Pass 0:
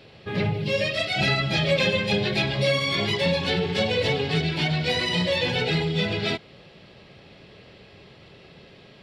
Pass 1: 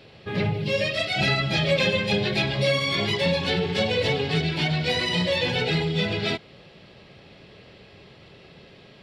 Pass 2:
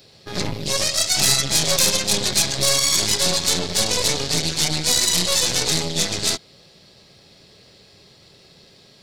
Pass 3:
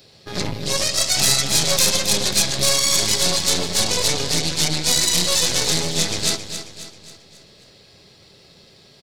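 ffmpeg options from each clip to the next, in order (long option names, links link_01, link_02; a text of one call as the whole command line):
ffmpeg -i in.wav -af anull out.wav
ffmpeg -i in.wav -af "aeval=exprs='0.316*(cos(1*acos(clip(val(0)/0.316,-1,1)))-cos(1*PI/2))+0.0891*(cos(6*acos(clip(val(0)/0.316,-1,1)))-cos(6*PI/2))':channel_layout=same,aexciter=amount=7.7:drive=3.4:freq=4100,volume=-4dB" out.wav
ffmpeg -i in.wav -af "aecho=1:1:269|538|807|1076|1345:0.316|0.149|0.0699|0.0328|0.0154" out.wav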